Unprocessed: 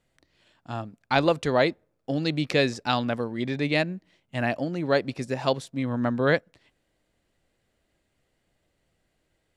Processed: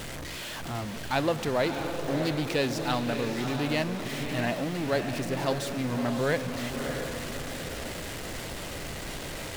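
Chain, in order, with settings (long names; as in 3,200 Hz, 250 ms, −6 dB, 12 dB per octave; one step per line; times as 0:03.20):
converter with a step at zero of −24.5 dBFS
feedback delay with all-pass diffusion 630 ms, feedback 46%, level −6 dB
highs frequency-modulated by the lows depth 0.15 ms
level −7 dB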